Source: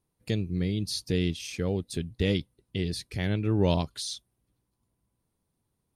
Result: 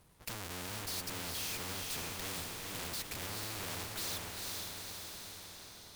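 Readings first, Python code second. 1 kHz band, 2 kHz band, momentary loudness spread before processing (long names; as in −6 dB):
−3.5 dB, −2.5 dB, 9 LU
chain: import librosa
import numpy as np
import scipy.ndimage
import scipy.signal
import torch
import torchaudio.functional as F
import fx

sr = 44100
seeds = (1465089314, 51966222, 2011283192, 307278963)

y = fx.halfwave_hold(x, sr)
y = fx.peak_eq(y, sr, hz=300.0, db=-8.0, octaves=1.9)
y = fx.tube_stage(y, sr, drive_db=43.0, bias=0.7)
y = fx.echo_diffused(y, sr, ms=458, feedback_pct=43, wet_db=-3.5)
y = fx.spectral_comp(y, sr, ratio=2.0)
y = F.gain(torch.from_numpy(y), 7.0).numpy()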